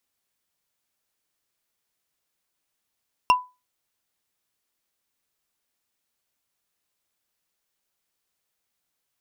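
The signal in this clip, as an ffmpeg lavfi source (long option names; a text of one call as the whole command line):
ffmpeg -f lavfi -i "aevalsrc='0.316*pow(10,-3*t/0.26)*sin(2*PI*998*t)+0.168*pow(10,-3*t/0.077)*sin(2*PI*2751.5*t)+0.0891*pow(10,-3*t/0.034)*sin(2*PI*5393.2*t)+0.0473*pow(10,-3*t/0.019)*sin(2*PI*8915.1*t)+0.0251*pow(10,-3*t/0.012)*sin(2*PI*13313.3*t)':duration=0.45:sample_rate=44100" out.wav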